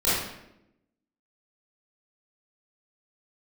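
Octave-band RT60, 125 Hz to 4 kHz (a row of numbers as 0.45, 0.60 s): 1.0, 1.2, 0.95, 0.75, 0.75, 0.60 s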